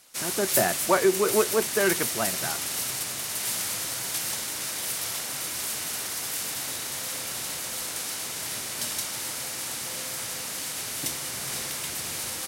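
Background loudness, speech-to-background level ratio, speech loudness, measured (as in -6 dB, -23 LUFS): -28.5 LUFS, 2.5 dB, -26.0 LUFS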